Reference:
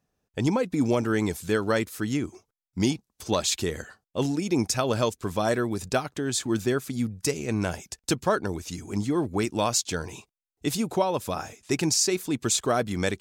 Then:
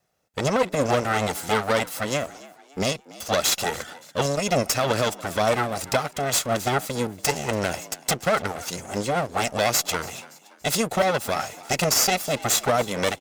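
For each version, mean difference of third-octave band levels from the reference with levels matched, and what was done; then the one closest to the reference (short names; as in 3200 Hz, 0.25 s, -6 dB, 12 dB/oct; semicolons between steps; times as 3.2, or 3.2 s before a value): 8.0 dB: minimum comb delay 1.5 ms; HPF 260 Hz 6 dB/oct; limiter -18.5 dBFS, peak gain reduction 6.5 dB; on a send: frequency-shifting echo 0.285 s, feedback 43%, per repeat +69 Hz, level -20 dB; on the sum: gain +8.5 dB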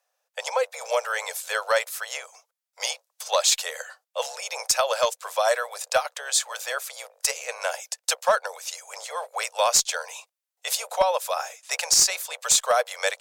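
13.0 dB: octaver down 2 oct, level +1 dB; steep high-pass 500 Hz 96 dB/oct; high shelf 4900 Hz +3 dB; one-sided clip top -17 dBFS; gain +4.5 dB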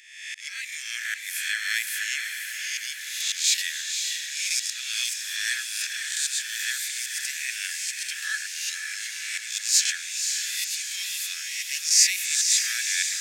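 24.0 dB: spectral swells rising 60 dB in 0.93 s; Chebyshev high-pass 1700 Hz, order 6; auto swell 0.238 s; on a send: diffused feedback echo 0.538 s, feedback 58%, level -5 dB; on the sum: gain +5.5 dB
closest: first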